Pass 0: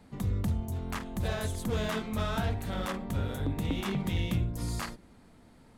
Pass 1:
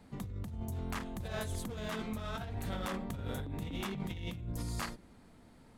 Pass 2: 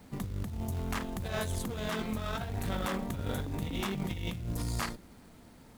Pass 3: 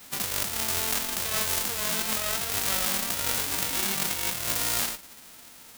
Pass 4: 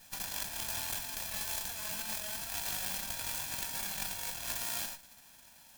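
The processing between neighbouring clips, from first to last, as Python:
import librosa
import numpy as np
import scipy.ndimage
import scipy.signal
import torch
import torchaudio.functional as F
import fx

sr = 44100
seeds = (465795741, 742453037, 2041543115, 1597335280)

y1 = fx.over_compress(x, sr, threshold_db=-34.0, ratio=-1.0)
y1 = F.gain(torch.from_numpy(y1), -4.5).numpy()
y2 = fx.cheby_harmonics(y1, sr, harmonics=(6,), levels_db=(-23,), full_scale_db=-24.0)
y2 = fx.quant_companded(y2, sr, bits=6)
y2 = F.gain(torch.from_numpy(y2), 4.0).numpy()
y3 = fx.envelope_flatten(y2, sr, power=0.1)
y3 = F.gain(torch.from_numpy(y3), 6.0).numpy()
y4 = fx.lower_of_two(y3, sr, delay_ms=1.2)
y4 = F.gain(torch.from_numpy(y4), -7.5).numpy()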